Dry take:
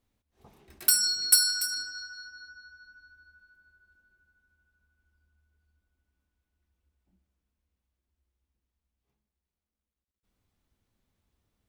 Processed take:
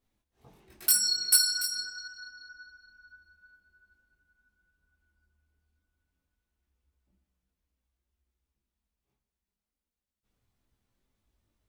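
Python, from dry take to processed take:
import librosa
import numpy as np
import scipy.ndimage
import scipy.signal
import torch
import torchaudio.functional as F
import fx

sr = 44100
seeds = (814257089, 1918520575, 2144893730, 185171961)

y = fx.chorus_voices(x, sr, voices=4, hz=0.25, base_ms=20, depth_ms=4.7, mix_pct=50)
y = y * 10.0 ** (2.0 / 20.0)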